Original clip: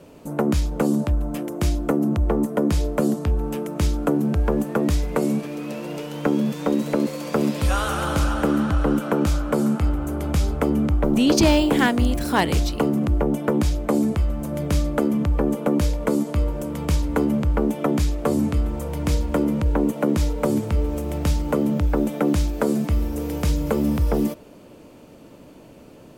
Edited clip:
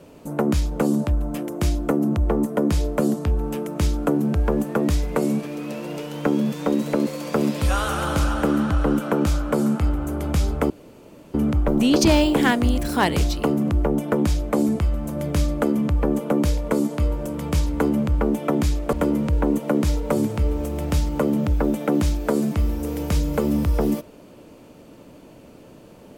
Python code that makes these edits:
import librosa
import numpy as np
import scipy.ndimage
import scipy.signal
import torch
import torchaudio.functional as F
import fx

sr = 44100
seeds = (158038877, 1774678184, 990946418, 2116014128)

y = fx.edit(x, sr, fx.insert_room_tone(at_s=10.7, length_s=0.64),
    fx.cut(start_s=18.29, length_s=0.97), tone=tone)